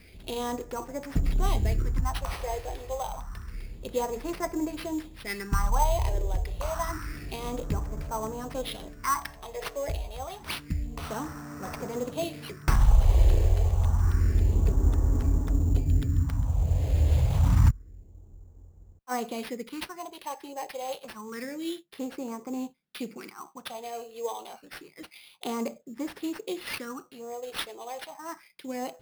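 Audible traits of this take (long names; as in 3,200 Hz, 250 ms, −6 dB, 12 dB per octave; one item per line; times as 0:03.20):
phaser sweep stages 4, 0.28 Hz, lowest notch 220–3,300 Hz
aliases and images of a low sample rate 7,100 Hz, jitter 0%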